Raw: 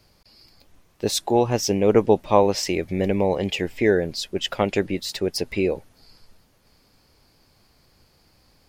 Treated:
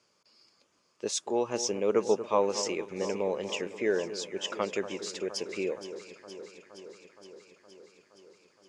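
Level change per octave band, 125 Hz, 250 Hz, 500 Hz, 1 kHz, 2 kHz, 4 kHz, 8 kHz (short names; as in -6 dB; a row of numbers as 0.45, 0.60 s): -18.5, -12.0, -8.0, -9.5, -8.5, -8.5, -4.5 dB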